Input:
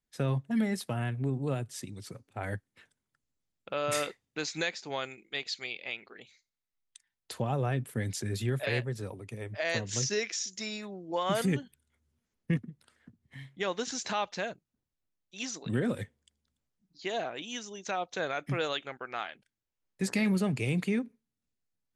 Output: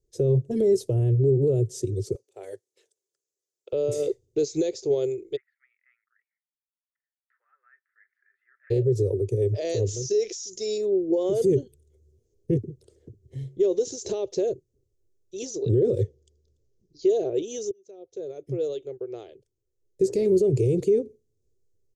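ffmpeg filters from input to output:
-filter_complex "[0:a]asettb=1/sr,asplit=3[s0][s1][s2];[s0]atrim=end=2.154[s3];[s1]atrim=start=2.15:end=3.73,asetpts=PTS-STARTPTS,afade=t=in:d=0.004:c=qsin,afade=t=out:st=1.576:d=0.004:c=qsin,highpass=990[s4];[s2]atrim=start=3.726[s5];[s3][s4]acrossfade=d=0.004:c1=hsin:c2=qsin[s6];[s6][s5]acrossfade=d=0.004:c1=qsin:c2=hsin,asplit=3[s7][s8][s9];[s7]afade=t=out:st=5.35:d=0.02[s10];[s8]asuperpass=centerf=1600:order=8:qfactor=2.4,afade=t=in:st=5.35:d=0.02,afade=t=out:st=8.7:d=0.02[s11];[s9]afade=t=in:st=8.7:d=0.02[s12];[s10][s11][s12]amix=inputs=3:normalize=0,asettb=1/sr,asplit=3[s13][s14][s15];[s13]atrim=end=9.424[s16];[s14]atrim=start=9.42:end=10.78,asetpts=PTS-STARTPTS,afade=t=in:d=0.004:c=qsin,afade=t=out:st=1.356:d=0.004:c=qsin,equalizer=f=3500:w=0.3:g=6.5[s17];[s15]atrim=start=10.776[s18];[s16][s17]acrossfade=d=0.004:c1=hsin:c2=qsin[s19];[s19][s18]acrossfade=d=0.004:c1=qsin:c2=hsin,asettb=1/sr,asplit=3[s20][s21][s22];[s20]atrim=end=15.554[s23];[s21]atrim=start=15.55:end=17.1,asetpts=PTS-STARTPTS,afade=t=in:d=0.004:c=qsin,afade=t=out:st=1.546:d=0.004:c=qsin,highshelf=f=7300:t=q:w=1.5:g=-7.5[s24];[s22]atrim=start=17.096[s25];[s23][s24]acrossfade=d=0.004:c1=hsin:c2=qsin[s26];[s26][s25]acrossfade=d=0.004:c1=qsin:c2=hsin,asplit=2[s27][s28];[s27]atrim=end=17.71,asetpts=PTS-STARTPTS,afade=t=out:st=17.706:d=0.004:c=hsin[s29];[s28]atrim=start=17.71,asetpts=PTS-STARTPTS,afade=t=in:d=3.29[s30];[s29][s30]concat=n=2:v=0:a=1,firequalizer=gain_entry='entry(120,0);entry(180,-17);entry(250,-18);entry(380,6);entry(770,-8);entry(1500,-21);entry(3100,-10);entry(6400,4);entry(9900,-5)':delay=0.05:min_phase=1,alimiter=level_in=2.37:limit=0.0631:level=0:latency=1:release=56,volume=0.422,lowshelf=f=590:t=q:w=1.5:g=12.5,volume=1.58"

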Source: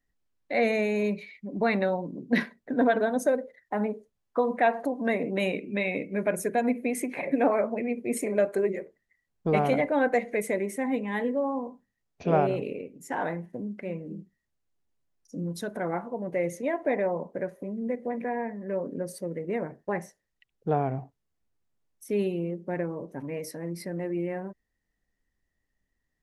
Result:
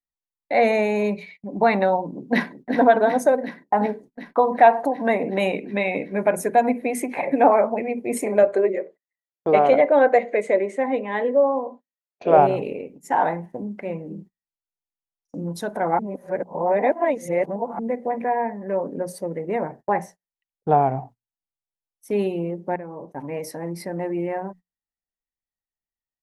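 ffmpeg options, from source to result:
-filter_complex "[0:a]asplit=2[s0][s1];[s1]afade=t=in:st=2.07:d=0.01,afade=t=out:st=2.76:d=0.01,aecho=0:1:370|740|1110|1480|1850|2220|2590|2960|3330|3700|4070|4440:0.354813|0.26611|0.199583|0.149687|0.112265|0.0841989|0.0631492|0.0473619|0.0355214|0.0266411|0.0199808|0.0149856[s2];[s0][s2]amix=inputs=2:normalize=0,asettb=1/sr,asplit=3[s3][s4][s5];[s3]atrim=end=8.434[s6];[s4]atrim=start=8.43:end=12.38,asetpts=PTS-STARTPTS,afade=t=in:d=0.004:c=qsin,afade=t=out:st=3.946:d=0.004:c=qsin,highpass=270,equalizer=f=360:t=q:w=4:g=3,equalizer=f=560:t=q:w=4:g=6,equalizer=f=860:t=q:w=4:g=-8,equalizer=f=5600:t=q:w=4:g=-10,lowpass=f=6800:w=0.5412,lowpass=f=6800:w=1.3066[s7];[s5]atrim=start=12.376[s8];[s6][s7]acrossfade=d=0.004:c1=hsin:c2=qsin[s9];[s9][s8]acrossfade=d=0.004:c1=qsin:c2=hsin,asplit=4[s10][s11][s12][s13];[s10]atrim=end=15.992[s14];[s11]atrim=start=15.988:end=17.792,asetpts=PTS-STARTPTS,areverse[s15];[s12]atrim=start=17.788:end=22.76,asetpts=PTS-STARTPTS,afade=t=out:st=4.968:d=0.004:c=hsin:silence=0.177828[s16];[s13]atrim=start=22.76,asetpts=PTS-STARTPTS,afade=t=in:d=0.82:c=qsin:silence=0.177828[s17];[s14][s15]acrossfade=d=0.004:c1=hsin:c2=hsin[s18];[s16][s17]concat=n=2:v=0:a=1[s19];[s18][s19]acrossfade=d=0.004:c1=hsin:c2=hsin,bandreject=f=60:t=h:w=6,bandreject=f=120:t=h:w=6,bandreject=f=180:t=h:w=6,bandreject=f=240:t=h:w=6,agate=range=0.0562:threshold=0.00447:ratio=16:detection=peak,equalizer=f=840:w=2:g=11,volume=1.5"

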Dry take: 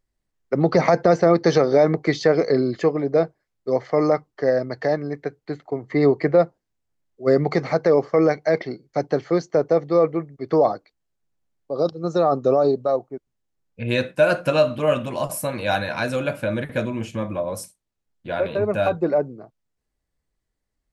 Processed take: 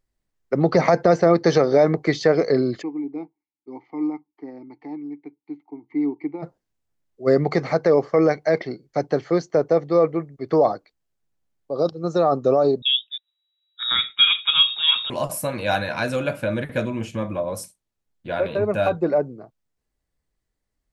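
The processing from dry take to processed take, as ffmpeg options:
-filter_complex "[0:a]asplit=3[s0][s1][s2];[s0]afade=t=out:st=2.81:d=0.02[s3];[s1]asplit=3[s4][s5][s6];[s4]bandpass=f=300:t=q:w=8,volume=1[s7];[s5]bandpass=f=870:t=q:w=8,volume=0.501[s8];[s6]bandpass=f=2240:t=q:w=8,volume=0.355[s9];[s7][s8][s9]amix=inputs=3:normalize=0,afade=t=in:st=2.81:d=0.02,afade=t=out:st=6.42:d=0.02[s10];[s2]afade=t=in:st=6.42:d=0.02[s11];[s3][s10][s11]amix=inputs=3:normalize=0,asettb=1/sr,asplit=3[s12][s13][s14];[s12]atrim=end=12.824[s15];[s13]atrim=start=12.82:end=15.1,asetpts=PTS-STARTPTS,afade=t=in:d=0.004:c=qsin,afade=t=out:st=2.276:d=0.004:c=qsin,lowpass=f=3300:t=q:w=0.5098,lowpass=f=3300:t=q:w=0.6013,lowpass=f=3300:t=q:w=0.9,lowpass=f=3300:t=q:w=2.563,afreqshift=-3900[s16];[s14]atrim=start=15.096[s17];[s15][s16]acrossfade=d=0.004:c1=hsin:c2=qsin[s18];[s18][s17]acrossfade=d=0.004:c1=qsin:c2=hsin"

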